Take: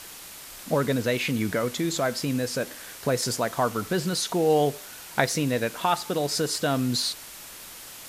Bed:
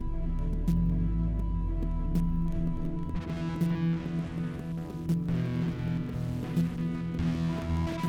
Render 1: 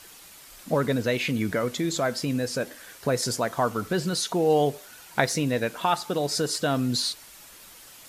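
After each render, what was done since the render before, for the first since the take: noise reduction 7 dB, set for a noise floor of -43 dBFS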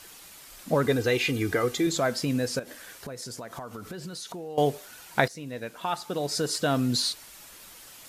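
0.86–1.87 s: comb 2.5 ms, depth 69%; 2.59–4.58 s: compression 8:1, threshold -35 dBFS; 5.28–6.73 s: fade in, from -18 dB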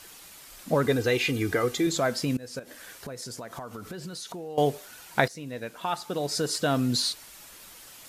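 2.37–2.84 s: fade in, from -21.5 dB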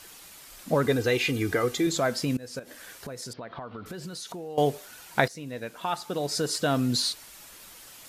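3.33–3.86 s: steep low-pass 4.2 kHz 48 dB/octave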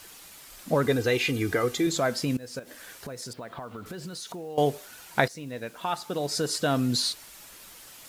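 word length cut 10-bit, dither none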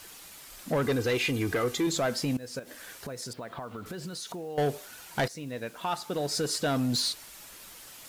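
saturation -21 dBFS, distortion -13 dB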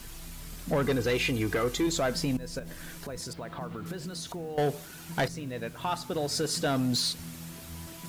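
add bed -14 dB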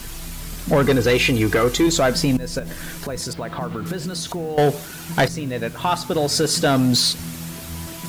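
trim +10.5 dB

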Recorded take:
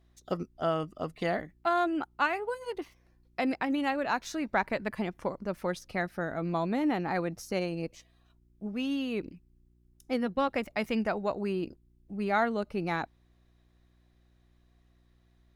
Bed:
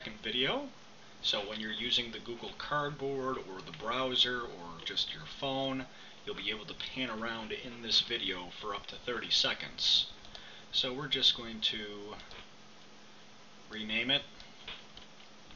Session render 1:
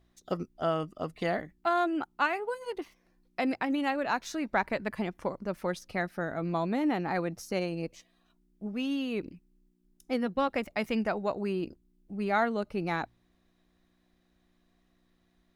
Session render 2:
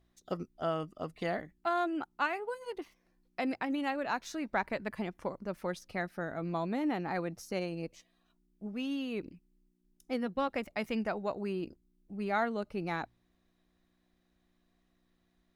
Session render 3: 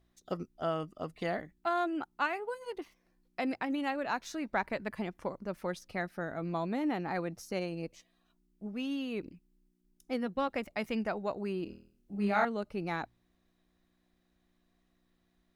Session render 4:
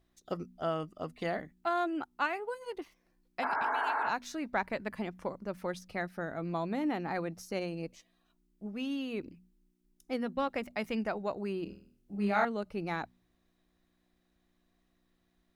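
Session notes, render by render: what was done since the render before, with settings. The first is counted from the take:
de-hum 60 Hz, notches 2
trim -4 dB
11.64–12.45 s: flutter echo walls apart 4.2 m, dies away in 0.51 s
3.45–4.07 s: spectral replace 240–2300 Hz after; de-hum 61.19 Hz, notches 4

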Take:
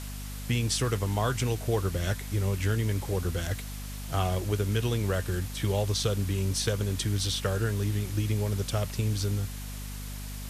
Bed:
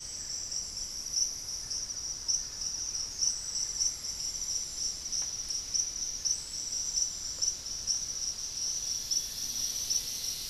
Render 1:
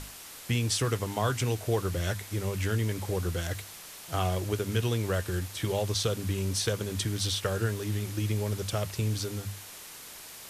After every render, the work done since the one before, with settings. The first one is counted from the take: hum notches 50/100/150/200/250 Hz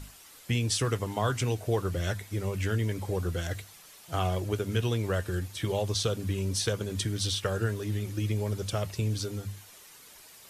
noise reduction 9 dB, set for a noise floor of -46 dBFS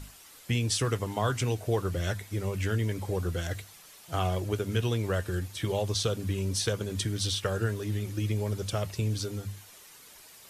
no audible change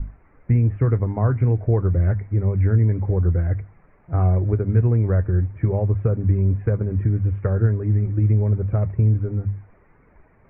steep low-pass 2.3 kHz 72 dB/octave; tilt EQ -4 dB/octave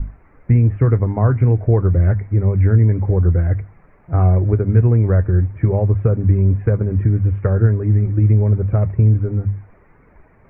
trim +4.5 dB

